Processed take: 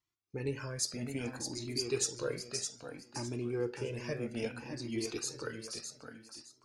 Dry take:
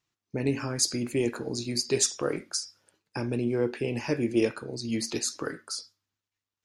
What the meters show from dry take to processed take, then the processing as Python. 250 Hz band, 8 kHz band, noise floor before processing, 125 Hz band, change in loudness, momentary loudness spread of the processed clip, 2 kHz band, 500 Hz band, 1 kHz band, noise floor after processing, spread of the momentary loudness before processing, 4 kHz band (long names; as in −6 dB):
−10.0 dB, −7.5 dB, below −85 dBFS, −6.5 dB, −8.5 dB, 12 LU, −6.5 dB, −8.0 dB, −8.0 dB, −70 dBFS, 11 LU, −7.0 dB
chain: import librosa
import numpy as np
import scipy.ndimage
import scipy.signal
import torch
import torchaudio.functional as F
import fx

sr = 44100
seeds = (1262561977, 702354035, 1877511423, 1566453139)

y = fx.echo_feedback(x, sr, ms=612, feedback_pct=27, wet_db=-6.5)
y = fx.rev_fdn(y, sr, rt60_s=1.3, lf_ratio=1.0, hf_ratio=0.3, size_ms=67.0, drr_db=19.5)
y = fx.comb_cascade(y, sr, direction='rising', hz=0.61)
y = y * librosa.db_to_amplitude(-4.0)